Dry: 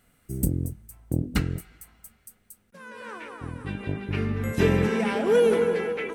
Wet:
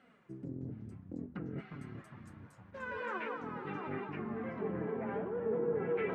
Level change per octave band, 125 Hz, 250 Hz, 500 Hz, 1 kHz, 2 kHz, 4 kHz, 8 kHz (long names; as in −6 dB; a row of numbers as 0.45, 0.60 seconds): −16.0 dB, −12.0 dB, −12.0 dB, −7.0 dB, −10.5 dB, −20.5 dB, below −30 dB